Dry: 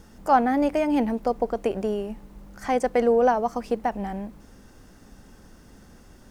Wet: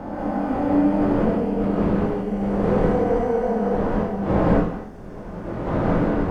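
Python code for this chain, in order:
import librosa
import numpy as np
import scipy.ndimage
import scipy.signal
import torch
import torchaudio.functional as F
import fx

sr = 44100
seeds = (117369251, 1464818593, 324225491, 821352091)

y = fx.spec_blur(x, sr, span_ms=1030.0)
y = fx.dmg_wind(y, sr, seeds[0], corner_hz=520.0, level_db=-31.0)
y = fx.high_shelf(y, sr, hz=2800.0, db=-12.0)
y = fx.doubler(y, sr, ms=24.0, db=-5.0)
y = fx.rev_gated(y, sr, seeds[1], gate_ms=220, shape='rising', drr_db=-4.5)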